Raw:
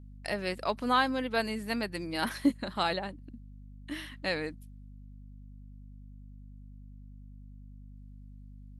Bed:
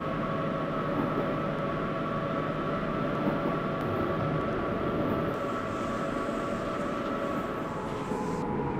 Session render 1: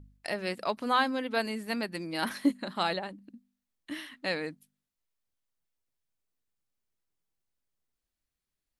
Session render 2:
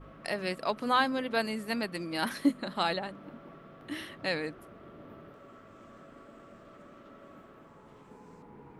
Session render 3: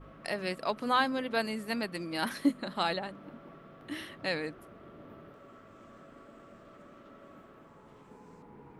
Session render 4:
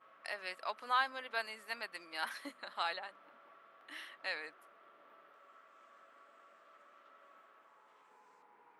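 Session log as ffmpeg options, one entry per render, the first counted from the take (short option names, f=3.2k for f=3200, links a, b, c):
-af "bandreject=f=50:t=h:w=4,bandreject=f=100:t=h:w=4,bandreject=f=150:t=h:w=4,bandreject=f=200:t=h:w=4,bandreject=f=250:t=h:w=4"
-filter_complex "[1:a]volume=-21dB[a];[0:a][a]amix=inputs=2:normalize=0"
-af "volume=-1dB"
-af "highpass=1.1k,highshelf=f=2.5k:g=-9"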